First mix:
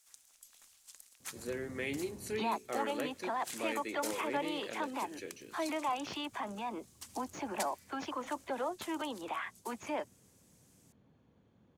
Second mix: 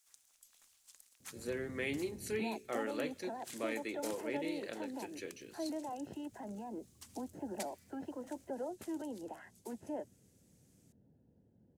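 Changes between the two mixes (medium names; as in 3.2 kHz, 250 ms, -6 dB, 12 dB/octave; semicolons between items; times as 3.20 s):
first sound -5.5 dB; second sound: add boxcar filter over 38 samples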